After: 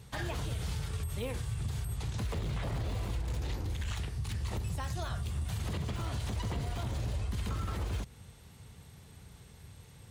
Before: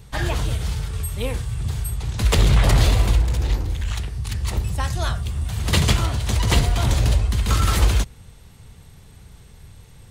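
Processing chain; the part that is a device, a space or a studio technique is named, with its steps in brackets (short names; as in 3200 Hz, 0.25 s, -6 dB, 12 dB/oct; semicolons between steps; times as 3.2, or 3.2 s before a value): podcast mastering chain (HPF 68 Hz 12 dB/oct; de-esser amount 75%; compressor 3:1, threshold -25 dBFS, peak gain reduction 8 dB; limiter -21.5 dBFS, peak gain reduction 6 dB; gain -5 dB; MP3 128 kbps 44100 Hz)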